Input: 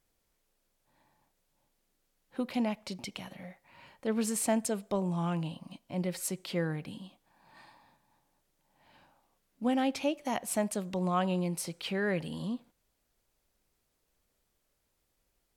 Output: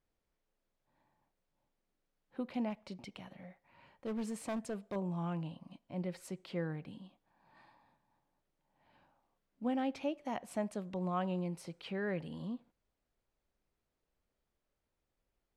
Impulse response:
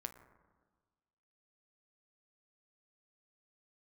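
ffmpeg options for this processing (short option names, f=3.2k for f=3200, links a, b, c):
-filter_complex "[0:a]aemphasis=mode=reproduction:type=75kf,asettb=1/sr,asplit=3[a][b][c];[a]atrim=end=2.704[d];[b]atrim=start=2.7:end=4.96,asetpts=PTS-STARTPTS,afade=t=in:d=0.004:c=qsin,afade=t=out:st=2.256:d=0.004:c=qsin,asoftclip=type=hard:threshold=-28.5dB[e];[c]atrim=start=4.956[f];[d][e]acrossfade=d=0.004:c1=hsin:c2=qsin[g];[g][f]acrossfade=d=0.004:c1=qsin:c2=hsin,volume=-5.5dB"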